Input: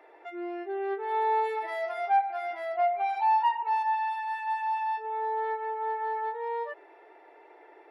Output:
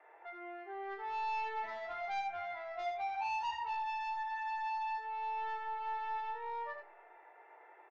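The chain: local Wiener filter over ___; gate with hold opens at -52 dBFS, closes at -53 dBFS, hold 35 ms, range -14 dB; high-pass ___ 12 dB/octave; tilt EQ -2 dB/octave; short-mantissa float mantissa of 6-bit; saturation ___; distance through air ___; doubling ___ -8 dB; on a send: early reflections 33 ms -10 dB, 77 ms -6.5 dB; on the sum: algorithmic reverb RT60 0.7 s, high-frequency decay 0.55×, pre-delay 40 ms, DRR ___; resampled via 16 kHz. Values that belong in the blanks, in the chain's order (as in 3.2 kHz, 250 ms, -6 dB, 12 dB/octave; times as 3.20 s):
9 samples, 1 kHz, -35.5 dBFS, 65 m, 22 ms, 19.5 dB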